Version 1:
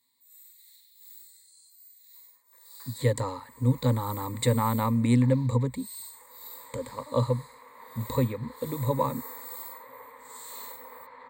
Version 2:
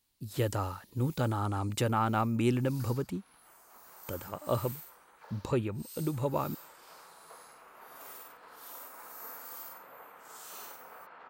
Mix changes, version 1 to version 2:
speech: entry −2.65 s
master: remove EQ curve with evenly spaced ripples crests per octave 1, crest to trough 18 dB

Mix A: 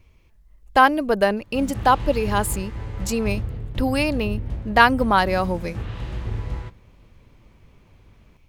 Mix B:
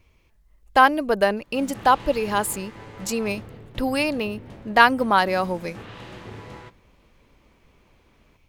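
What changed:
background: add high-pass filter 160 Hz 12 dB per octave
master: add low-shelf EQ 220 Hz −6 dB

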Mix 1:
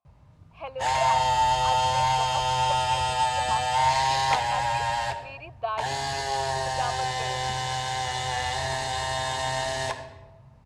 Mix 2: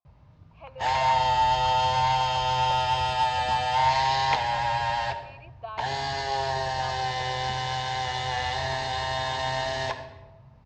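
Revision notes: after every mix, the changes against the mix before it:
speech −8.5 dB
master: add low-pass filter 5,600 Hz 24 dB per octave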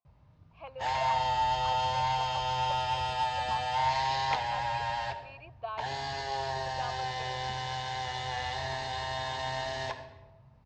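background −6.0 dB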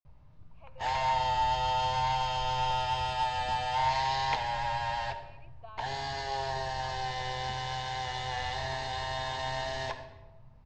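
speech −11.0 dB
master: remove high-pass filter 61 Hz

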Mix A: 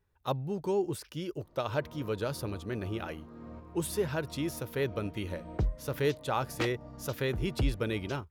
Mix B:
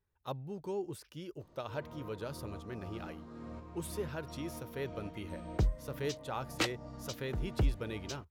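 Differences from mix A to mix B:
speech −8.0 dB
background: add high-shelf EQ 3,700 Hz +11.5 dB

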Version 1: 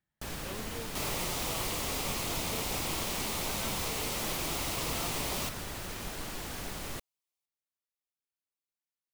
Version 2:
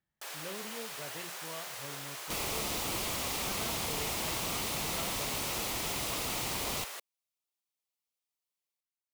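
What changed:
first sound: add Bessel high-pass filter 710 Hz, order 6
second sound: entry +1.35 s

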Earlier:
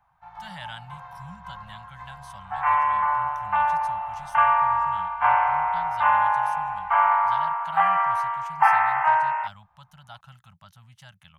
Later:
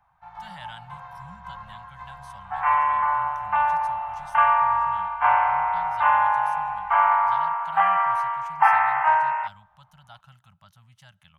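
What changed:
speech −4.5 dB
reverb: on, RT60 1.6 s

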